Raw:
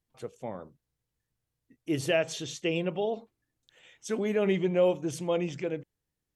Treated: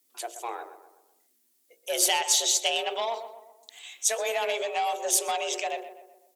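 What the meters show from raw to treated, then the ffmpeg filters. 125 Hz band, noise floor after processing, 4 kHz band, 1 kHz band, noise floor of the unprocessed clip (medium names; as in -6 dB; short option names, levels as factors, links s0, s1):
under -35 dB, -69 dBFS, +12.5 dB, +11.0 dB, under -85 dBFS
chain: -filter_complex "[0:a]bandreject=f=60:t=h:w=6,bandreject=f=120:t=h:w=6,bandreject=f=180:t=h:w=6,bandreject=f=240:t=h:w=6,bandreject=f=300:t=h:w=6,bandreject=f=360:t=h:w=6,bandreject=f=420:t=h:w=6,acompressor=threshold=0.0447:ratio=5,afreqshift=230,asoftclip=type=tanh:threshold=0.0631,crystalizer=i=9:c=0,asplit=2[s0][s1];[s1]adelay=126,lowpass=f=1900:p=1,volume=0.299,asplit=2[s2][s3];[s3]adelay=126,lowpass=f=1900:p=1,volume=0.5,asplit=2[s4][s5];[s5]adelay=126,lowpass=f=1900:p=1,volume=0.5,asplit=2[s6][s7];[s7]adelay=126,lowpass=f=1900:p=1,volume=0.5,asplit=2[s8][s9];[s9]adelay=126,lowpass=f=1900:p=1,volume=0.5[s10];[s0][s2][s4][s6][s8][s10]amix=inputs=6:normalize=0"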